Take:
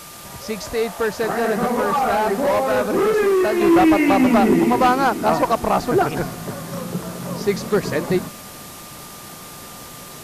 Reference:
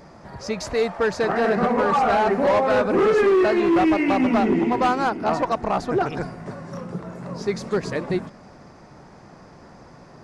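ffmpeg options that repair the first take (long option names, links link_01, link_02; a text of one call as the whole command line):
ffmpeg -i in.wav -af "bandreject=frequency=1200:width=30,afwtdn=0.013,asetnsamples=nb_out_samples=441:pad=0,asendcmd='3.61 volume volume -4.5dB',volume=0dB" out.wav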